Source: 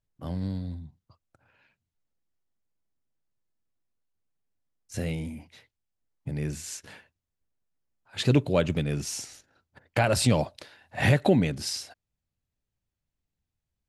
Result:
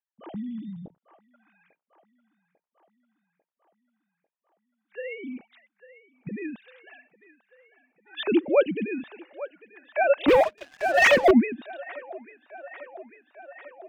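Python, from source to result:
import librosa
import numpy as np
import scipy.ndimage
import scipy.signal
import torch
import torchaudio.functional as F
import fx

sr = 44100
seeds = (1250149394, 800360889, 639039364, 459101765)

y = fx.sine_speech(x, sr)
y = fx.echo_wet_bandpass(y, sr, ms=846, feedback_pct=68, hz=1100.0, wet_db=-13.0)
y = fx.leveller(y, sr, passes=3, at=(10.28, 11.31))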